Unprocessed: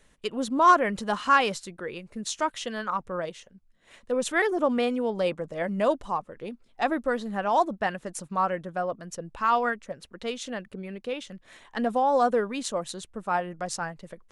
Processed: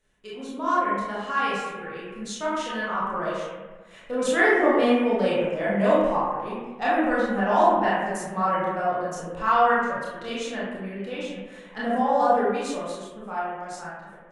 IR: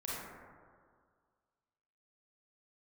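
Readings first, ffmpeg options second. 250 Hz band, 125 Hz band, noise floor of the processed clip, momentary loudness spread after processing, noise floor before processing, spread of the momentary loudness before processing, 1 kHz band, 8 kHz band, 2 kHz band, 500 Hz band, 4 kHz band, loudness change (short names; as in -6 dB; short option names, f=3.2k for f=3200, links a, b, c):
+4.0 dB, +3.5 dB, -46 dBFS, 16 LU, -62 dBFS, 15 LU, +2.0 dB, -2.5 dB, +4.0 dB, +3.5 dB, 0.0 dB, +3.0 dB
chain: -filter_complex "[1:a]atrim=start_sample=2205,asetrate=66150,aresample=44100[a];[0:a][a]afir=irnorm=-1:irlink=0,dynaudnorm=f=220:g=17:m=12.5dB,volume=-4.5dB"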